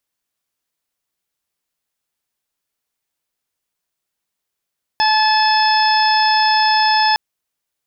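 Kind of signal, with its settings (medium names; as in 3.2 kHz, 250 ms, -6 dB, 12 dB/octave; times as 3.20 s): steady additive tone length 2.16 s, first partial 865 Hz, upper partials -6/-12.5/-12.5/-16/-4.5 dB, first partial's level -13.5 dB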